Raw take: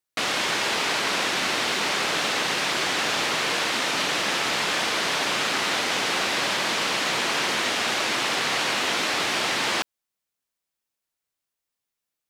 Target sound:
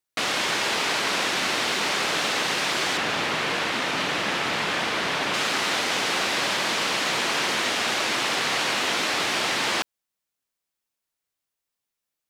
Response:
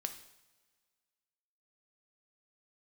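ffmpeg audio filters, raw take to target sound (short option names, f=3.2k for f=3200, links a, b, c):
-filter_complex "[0:a]asettb=1/sr,asplit=3[a][b][c];[a]atrim=end=2.974[d];[b]atrim=start=2.97:end=5.34,asetpts=PTS-STARTPTS,afade=t=in:d=0.004:c=qsin,afade=t=out:st=2.366:d=0.004:c=qsin,bass=f=250:g=4,treble=f=4k:g=-7[e];[c]atrim=start=5.336[f];[d][e]acrossfade=d=0.004:c1=hsin:c2=qsin[g];[g][f]acrossfade=d=0.004:c1=qsin:c2=hsin"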